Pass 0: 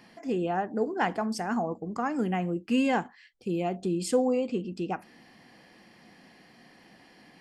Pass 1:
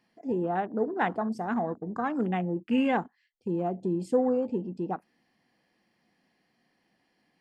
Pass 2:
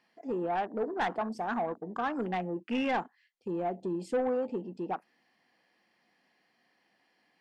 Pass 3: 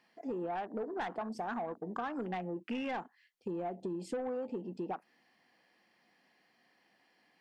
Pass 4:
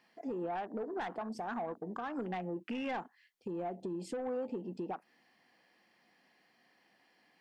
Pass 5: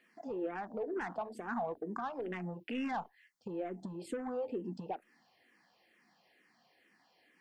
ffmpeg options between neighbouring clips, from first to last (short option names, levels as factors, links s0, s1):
-af "afwtdn=0.0141"
-filter_complex "[0:a]asplit=2[s0][s1];[s1]highpass=f=720:p=1,volume=7.08,asoftclip=type=tanh:threshold=0.237[s2];[s0][s2]amix=inputs=2:normalize=0,lowpass=f=4300:p=1,volume=0.501,volume=0.398"
-af "acompressor=threshold=0.0158:ratio=6,volume=1.12"
-af "alimiter=level_in=2.37:limit=0.0631:level=0:latency=1:release=213,volume=0.422,volume=1.12"
-filter_complex "[0:a]asplit=2[s0][s1];[s1]afreqshift=-2.2[s2];[s0][s2]amix=inputs=2:normalize=1,volume=1.41"